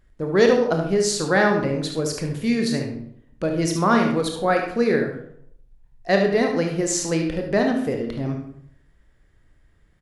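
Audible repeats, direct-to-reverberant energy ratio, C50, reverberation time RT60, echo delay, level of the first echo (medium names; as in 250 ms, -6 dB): 1, 2.0 dB, 4.5 dB, 0.70 s, 73 ms, -8.5 dB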